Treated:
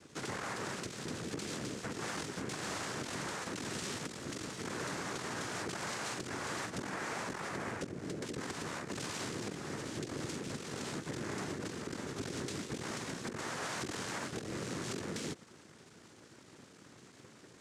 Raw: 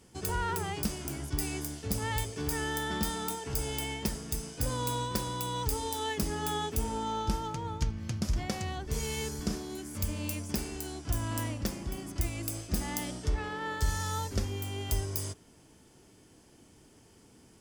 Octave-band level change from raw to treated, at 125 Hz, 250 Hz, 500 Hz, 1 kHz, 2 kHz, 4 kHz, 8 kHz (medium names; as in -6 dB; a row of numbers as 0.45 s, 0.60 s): -10.5 dB, -4.0 dB, -3.5 dB, -6.5 dB, -1.0 dB, -4.0 dB, -5.0 dB